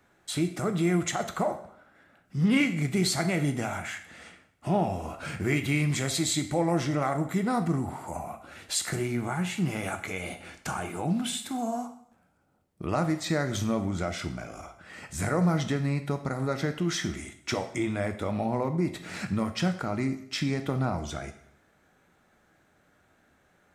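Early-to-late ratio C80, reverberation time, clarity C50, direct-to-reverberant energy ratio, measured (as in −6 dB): 14.5 dB, 0.70 s, 11.5 dB, 7.0 dB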